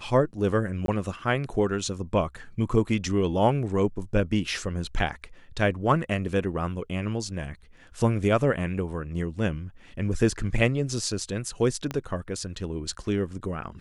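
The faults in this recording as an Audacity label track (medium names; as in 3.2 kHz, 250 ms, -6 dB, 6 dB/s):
0.860000	0.880000	dropout 22 ms
11.910000	11.910000	pop -16 dBFS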